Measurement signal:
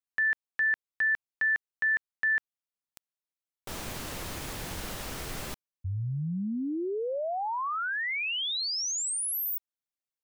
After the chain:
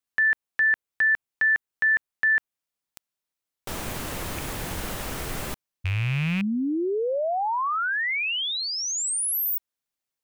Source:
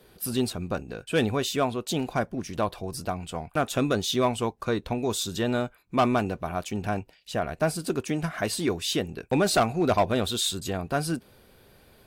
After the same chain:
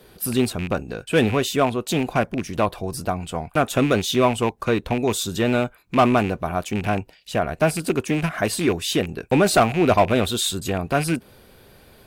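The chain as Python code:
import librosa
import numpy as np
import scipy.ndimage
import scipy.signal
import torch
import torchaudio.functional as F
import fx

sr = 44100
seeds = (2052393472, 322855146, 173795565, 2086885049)

y = fx.rattle_buzz(x, sr, strikes_db=-33.0, level_db=-25.0)
y = fx.dynamic_eq(y, sr, hz=4800.0, q=1.0, threshold_db=-47.0, ratio=4.0, max_db=-4)
y = F.gain(torch.from_numpy(y), 6.0).numpy()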